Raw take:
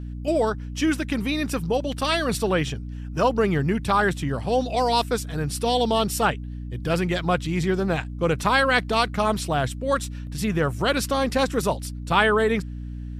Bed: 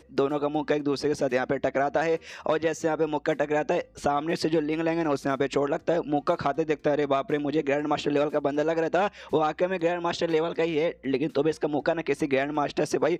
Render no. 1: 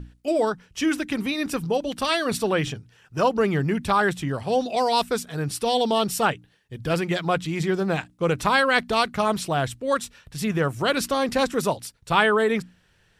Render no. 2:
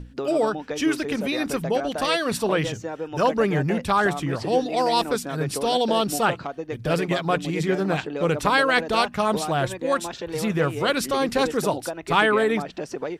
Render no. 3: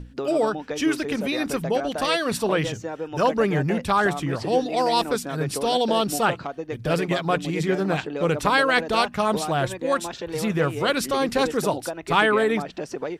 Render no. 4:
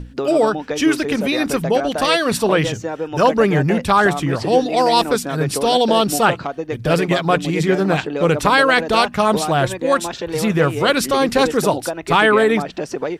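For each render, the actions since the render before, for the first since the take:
notches 60/120/180/240/300 Hz
add bed -6 dB
nothing audible
gain +6.5 dB; limiter -1 dBFS, peak gain reduction 3 dB

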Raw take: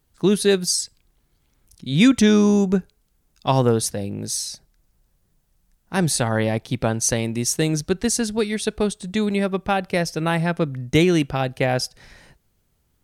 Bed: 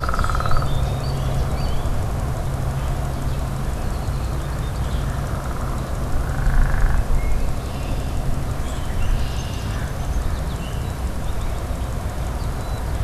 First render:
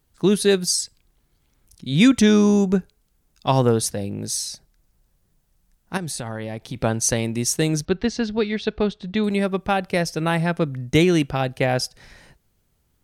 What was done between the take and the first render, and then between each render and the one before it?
5.97–6.76 compressor, threshold -26 dBFS; 7.85–9.24 LPF 4400 Hz 24 dB/oct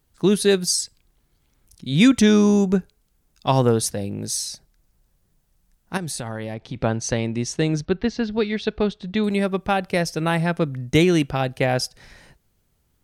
6.54–8.32 air absorption 110 m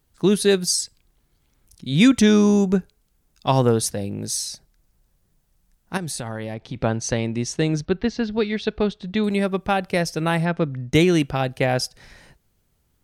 10.45–10.93 air absorption 120 m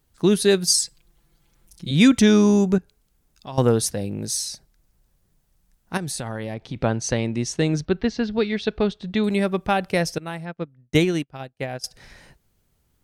0.67–1.91 comb 5.9 ms, depth 91%; 2.78–3.58 compressor 2:1, threshold -44 dBFS; 10.18–11.84 upward expander 2.5:1, over -36 dBFS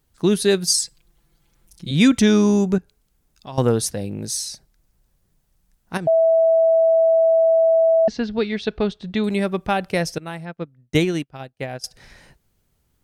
6.07–8.08 bleep 654 Hz -12 dBFS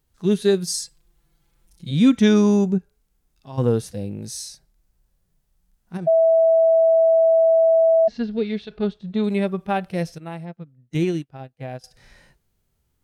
harmonic-percussive split percussive -16 dB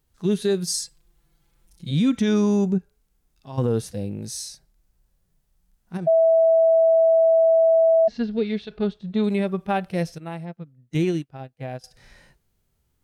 limiter -13 dBFS, peak gain reduction 7.5 dB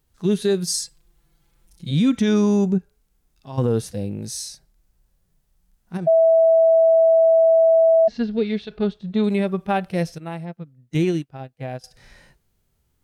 gain +2 dB

